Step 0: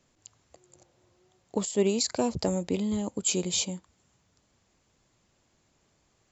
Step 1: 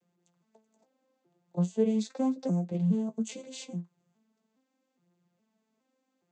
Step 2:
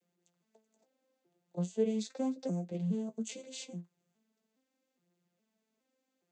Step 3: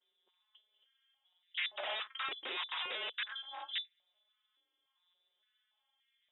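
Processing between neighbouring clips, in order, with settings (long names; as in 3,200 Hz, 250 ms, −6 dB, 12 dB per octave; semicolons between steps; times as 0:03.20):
vocoder with an arpeggio as carrier major triad, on F3, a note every 414 ms; flanger 0.37 Hz, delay 9.4 ms, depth 9.6 ms, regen +37%; level +4 dB
octave-band graphic EQ 125/250/1,000 Hz −9/−3/−7 dB; level −1 dB
wrap-around overflow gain 35.5 dB; voice inversion scrambler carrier 3,700 Hz; high-pass on a step sequencer 3.5 Hz 390–2,000 Hz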